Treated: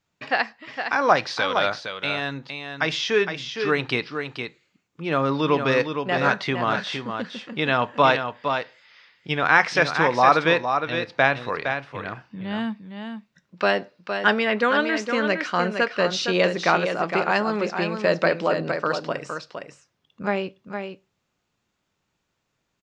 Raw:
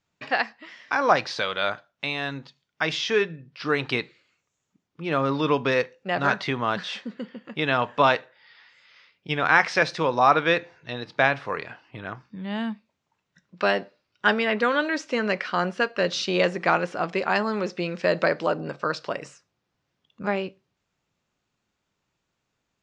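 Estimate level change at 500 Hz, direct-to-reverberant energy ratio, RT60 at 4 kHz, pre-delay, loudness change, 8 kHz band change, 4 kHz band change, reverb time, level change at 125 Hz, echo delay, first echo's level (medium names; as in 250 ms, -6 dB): +2.5 dB, no reverb, no reverb, no reverb, +2.0 dB, +2.5 dB, +2.5 dB, no reverb, +2.5 dB, 462 ms, -7.0 dB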